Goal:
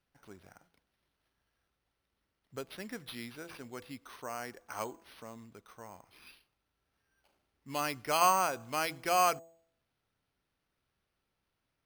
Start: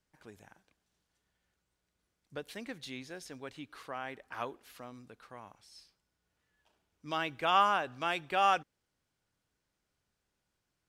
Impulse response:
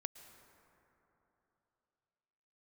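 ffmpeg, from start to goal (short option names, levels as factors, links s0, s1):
-af "bandreject=f=180.1:t=h:w=4,bandreject=f=360.2:t=h:w=4,bandreject=f=540.3:t=h:w=4,bandreject=f=720.4:t=h:w=4,bandreject=f=900.5:t=h:w=4,bandreject=f=1080.6:t=h:w=4,bandreject=f=1260.7:t=h:w=4,asetrate=40517,aresample=44100,acrusher=samples=6:mix=1:aa=0.000001"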